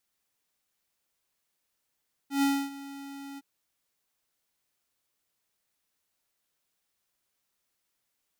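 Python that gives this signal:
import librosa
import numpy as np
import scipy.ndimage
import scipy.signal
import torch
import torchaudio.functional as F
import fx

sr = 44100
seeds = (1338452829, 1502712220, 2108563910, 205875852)

y = fx.adsr_tone(sr, wave='square', hz=278.0, attack_ms=124.0, decay_ms=273.0, sustain_db=-18.5, held_s=1.08, release_ms=32.0, level_db=-23.5)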